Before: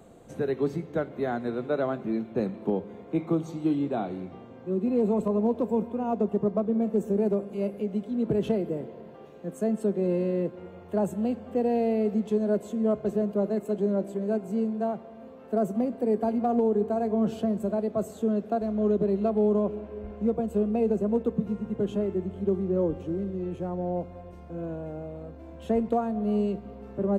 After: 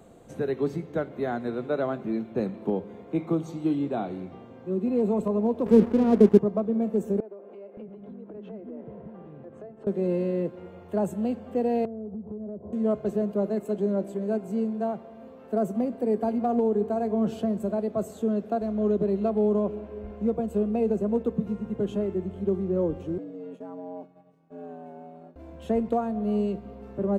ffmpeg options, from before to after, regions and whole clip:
ffmpeg -i in.wav -filter_complex "[0:a]asettb=1/sr,asplit=3[link_01][link_02][link_03];[link_01]atrim=end=5.664[link_04];[link_02]atrim=start=5.66:end=6.39,asetpts=PTS-STARTPTS,afade=type=in:duration=0.004:curve=qsin,afade=type=out:start_time=0.726:duration=0.004:curve=qsin,lowshelf=frequency=560:width_type=q:width=1.5:gain=9.5,aeval=exprs='sgn(val(0))*max(abs(val(0))-0.015,0)':channel_layout=same[link_05];[link_03]atrim=start=6.386[link_06];[link_04][link_05]acrossfade=duration=0.004:curve1=hsin:curve2=qsin[link_07];[link_07][link_06]acrossfade=duration=0.004:curve1=qsin:curve2=hsin,asettb=1/sr,asplit=3[link_08][link_09][link_10];[link_08]atrim=end=7.204[link_11];[link_09]atrim=start=7.2:end=9.87,asetpts=PTS-STARTPTS,afade=type=in:duration=0.004:curve=qsin,afade=type=out:start_time=2.666:duration=0.004:curve=qsin,lowpass=1800,acompressor=threshold=-36dB:ratio=6:attack=3.2:release=140:knee=1:detection=peak,acrossover=split=290[link_12][link_13];[link_12]adelay=570[link_14];[link_14][link_13]amix=inputs=2:normalize=0,atrim=end_sample=117747[link_15];[link_10]atrim=start=9.866[link_16];[link_11][link_15]acrossfade=duration=0.004:curve1=hsin:curve2=qsin[link_17];[link_17][link_16]acrossfade=duration=0.004:curve1=qsin:curve2=hsin,asettb=1/sr,asplit=3[link_18][link_19][link_20];[link_18]atrim=end=11.854[link_21];[link_19]atrim=start=11.85:end=12.73,asetpts=PTS-STARTPTS,afade=type=in:duration=0.004:curve=qsin,afade=type=out:start_time=0.876:duration=0.004:curve=qsin,lowpass=frequency=1000:width=0.5412,lowpass=frequency=1000:width=1.3066,equalizer=frequency=82:width=0.73:gain=14.5,acompressor=threshold=-34dB:ratio=6:attack=3.2:release=140:knee=1:detection=peak[link_22];[link_20]atrim=start=12.726[link_23];[link_21][link_22]acrossfade=duration=0.004:curve1=hsin:curve2=qsin[link_24];[link_24][link_23]acrossfade=duration=0.004:curve1=qsin:curve2=hsin,asettb=1/sr,asplit=3[link_25][link_26][link_27];[link_25]atrim=end=23.184[link_28];[link_26]atrim=start=23.18:end=25.36,asetpts=PTS-STARTPTS,afade=type=in:duration=0.004:curve=qsin,afade=type=out:start_time=2.176:duration=0.004:curve=qsin,afreqshift=92,agate=range=-33dB:threshold=-34dB:ratio=3:release=100:detection=peak,acompressor=threshold=-41dB:ratio=2:attack=3.2:release=140:knee=1:detection=peak[link_29];[link_27]atrim=start=25.356[link_30];[link_28][link_29]acrossfade=duration=0.004:curve1=hsin:curve2=qsin[link_31];[link_31][link_30]acrossfade=duration=0.004:curve1=qsin:curve2=hsin" out.wav

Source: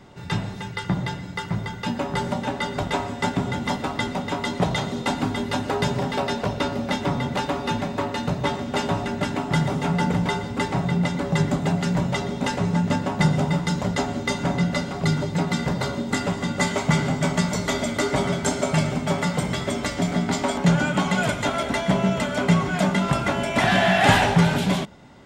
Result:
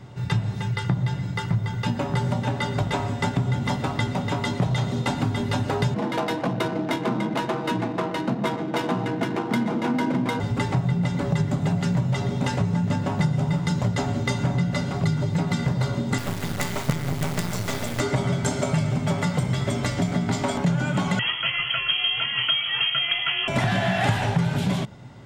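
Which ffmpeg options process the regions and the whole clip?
ffmpeg -i in.wav -filter_complex "[0:a]asettb=1/sr,asplit=3[link_01][link_02][link_03];[link_01]atrim=end=5.944[link_04];[link_02]atrim=start=5.94:end=10.4,asetpts=PTS-STARTPTS,afade=type=in:duration=0.004:curve=qsin,afade=type=out:start_time=4.456:duration=0.004:curve=qsin,afreqshift=76,adynamicsmooth=sensitivity=4.5:basefreq=1300[link_05];[link_03]atrim=start=10.396[link_06];[link_04][link_05]acrossfade=duration=0.004:curve1=hsin:curve2=qsin[link_07];[link_07][link_06]acrossfade=duration=0.004:curve1=qsin:curve2=hsin,asettb=1/sr,asplit=3[link_08][link_09][link_10];[link_08]atrim=end=16.184[link_11];[link_09]atrim=start=16.18:end=18,asetpts=PTS-STARTPTS,afade=type=in:duration=0.004:curve=qsin,afade=type=out:start_time=1.816:duration=0.004:curve=qsin,bandreject=frequency=60:width_type=h:width=6,bandreject=frequency=120:width_type=h:width=6,bandreject=frequency=180:width_type=h:width=6,bandreject=frequency=240:width_type=h:width=6,bandreject=frequency=300:width_type=h:width=6,acrusher=bits=3:dc=4:mix=0:aa=0.000001[link_12];[link_10]atrim=start=17.996[link_13];[link_11][link_12]acrossfade=duration=0.004:curve1=hsin:curve2=qsin[link_14];[link_14][link_13]acrossfade=duration=0.004:curve1=qsin:curve2=hsin,asettb=1/sr,asplit=3[link_15][link_16][link_17];[link_15]atrim=end=21.194[link_18];[link_16]atrim=start=21.19:end=23.48,asetpts=PTS-STARTPTS,afade=type=in:duration=0.004:curve=qsin,afade=type=out:start_time=2.286:duration=0.004:curve=qsin,highpass=42,lowpass=frequency=2900:width_type=q:width=0.5098,lowpass=frequency=2900:width_type=q:width=0.6013,lowpass=frequency=2900:width_type=q:width=0.9,lowpass=frequency=2900:width_type=q:width=2.563,afreqshift=-3400[link_19];[link_17]atrim=start=23.476[link_20];[link_18][link_19]acrossfade=duration=0.004:curve1=hsin:curve2=qsin[link_21];[link_21][link_20]acrossfade=duration=0.004:curve1=qsin:curve2=hsin,equalizer=frequency=120:width_type=o:width=0.58:gain=14,acompressor=threshold=-20dB:ratio=4" out.wav

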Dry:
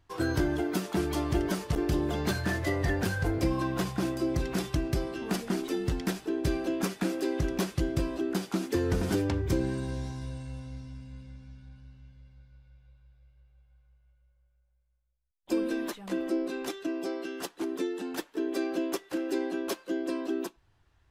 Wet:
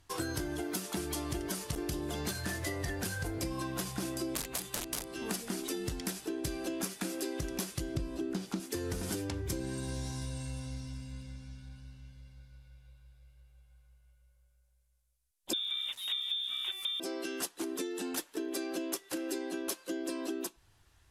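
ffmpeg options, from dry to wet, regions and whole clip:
ffmpeg -i in.wav -filter_complex "[0:a]asettb=1/sr,asplit=3[link_01][link_02][link_03];[link_01]atrim=end=4.354[link_04];[link_02]atrim=start=4.35:end=5.1,asetpts=PTS-STARTPTS,afade=type=in:duration=0.004:curve=qsin,afade=type=out:start_time=0.746:duration=0.004:curve=qsin,bandreject=frequency=5400:width=6.4,aeval=exprs='(mod(16.8*val(0)+1,2)-1)/16.8':channel_layout=same[link_05];[link_03]atrim=start=5.096[link_06];[link_04][link_05]acrossfade=duration=0.004:curve1=hsin:curve2=qsin[link_07];[link_07][link_06]acrossfade=duration=0.004:curve1=qsin:curve2=hsin,asettb=1/sr,asplit=3[link_08][link_09][link_10];[link_08]atrim=end=7.954[link_11];[link_09]atrim=start=7.95:end=8.6,asetpts=PTS-STARTPTS,afade=type=in:duration=0.004:curve=qsin,afade=type=out:start_time=0.646:duration=0.004:curve=qsin,acrossover=split=6200[link_12][link_13];[link_13]acompressor=threshold=-59dB:ratio=4:attack=1:release=60[link_14];[link_12][link_14]amix=inputs=2:normalize=0,lowshelf=frequency=340:gain=10.5[link_15];[link_10]atrim=start=8.596[link_16];[link_11][link_15]acrossfade=duration=0.004:curve1=hsin:curve2=qsin[link_17];[link_17][link_16]acrossfade=duration=0.004:curve1=qsin:curve2=hsin,asettb=1/sr,asplit=3[link_18][link_19][link_20];[link_18]atrim=end=15.534[link_21];[link_19]atrim=start=15.53:end=17,asetpts=PTS-STARTPTS,afade=type=in:duration=0.004:curve=qsin,afade=type=out:start_time=1.466:duration=0.004:curve=qsin,lowpass=frequency=3300:width_type=q:width=0.5098,lowpass=frequency=3300:width_type=q:width=0.6013,lowpass=frequency=3300:width_type=q:width=0.9,lowpass=frequency=3300:width_type=q:width=2.563,afreqshift=-3900,aeval=exprs='val(0)*gte(abs(val(0)),0.00335)':channel_layout=same[link_22];[link_20]atrim=start=16.996[link_23];[link_21][link_22]acrossfade=duration=0.004:curve1=hsin:curve2=qsin[link_24];[link_24][link_23]acrossfade=duration=0.004:curve1=qsin:curve2=hsin,lowpass=frequency=12000:width=0.5412,lowpass=frequency=12000:width=1.3066,aemphasis=mode=production:type=75fm,acompressor=threshold=-35dB:ratio=6,volume=1.5dB" out.wav

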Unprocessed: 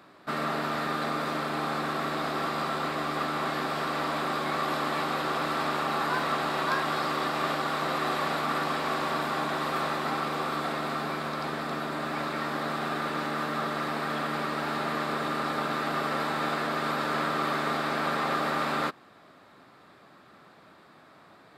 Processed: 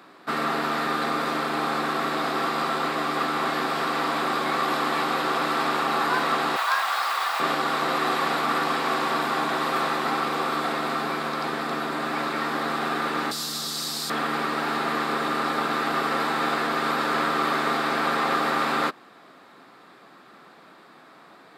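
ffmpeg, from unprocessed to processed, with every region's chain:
ffmpeg -i in.wav -filter_complex "[0:a]asettb=1/sr,asplit=3[link_01][link_02][link_03];[link_01]atrim=end=6.564[link_04];[link_02]atrim=start=6.56:end=7.4,asetpts=PTS-STARTPTS,afade=type=in:duration=0.004:curve=qsin,afade=type=out:start_time=0.836:duration=0.004:curve=qsin,highpass=frequency=700:width=0.5412,highpass=frequency=700:width=1.3066,acrusher=bits=8:dc=4:mix=0:aa=0.000001[link_05];[link_03]atrim=start=7.396[link_06];[link_04][link_05]acrossfade=duration=0.004:curve1=hsin:curve2=qsin[link_07];[link_07][link_06]acrossfade=duration=0.004:curve1=qsin:curve2=hsin,asettb=1/sr,asplit=3[link_08][link_09][link_10];[link_08]atrim=end=13.314[link_11];[link_09]atrim=start=13.31:end=14.1,asetpts=PTS-STARTPTS,afade=type=in:duration=0.004:curve=qsin,afade=type=out:start_time=0.786:duration=0.004:curve=qsin,highshelf=frequency=3500:width_type=q:width=1.5:gain=13,acrossover=split=170|3000[link_12][link_13][link_14];[link_13]acompressor=threshold=-41dB:ratio=6:attack=3.2:release=140:knee=2.83:detection=peak[link_15];[link_12][link_15][link_14]amix=inputs=3:normalize=0[link_16];[link_10]atrim=start=14.096[link_17];[link_11][link_16]acrossfade=duration=0.004:curve1=hsin:curve2=qsin[link_18];[link_18][link_17]acrossfade=duration=0.004:curve1=qsin:curve2=hsin,highpass=200,bandreject=frequency=600:width=12,volume=5dB" out.wav

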